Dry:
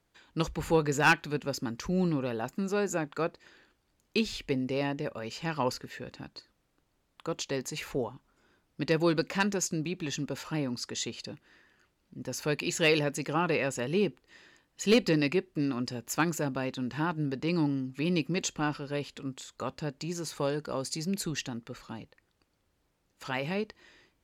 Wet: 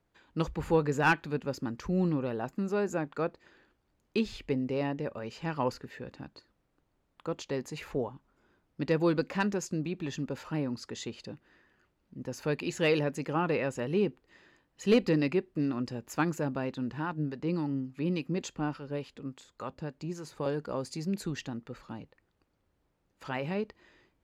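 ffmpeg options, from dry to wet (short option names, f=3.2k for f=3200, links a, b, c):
-filter_complex "[0:a]asettb=1/sr,asplit=3[a][b][c];[a]atrim=end=16.924[d];[b]atrim=start=16.92:end=20.46,asetpts=PTS-STARTPTS,afade=t=in:d=0.004:c=qsin,afade=t=out:st=3.536:d=0.004:c=qsin,acrossover=split=760[e][f];[e]aeval=exprs='val(0)*(1-0.5/2+0.5/2*cos(2*PI*3.5*n/s))':c=same[g];[f]aeval=exprs='val(0)*(1-0.5/2-0.5/2*cos(2*PI*3.5*n/s))':c=same[h];[g][h]amix=inputs=2:normalize=0[i];[c]atrim=start=20.456[j];[d][i]acrossfade=d=0.004:c1=hsin:c2=qsin[k];[k][j]acrossfade=d=0.004:c1=qsin:c2=hsin,highshelf=f=2.6k:g=-10.5"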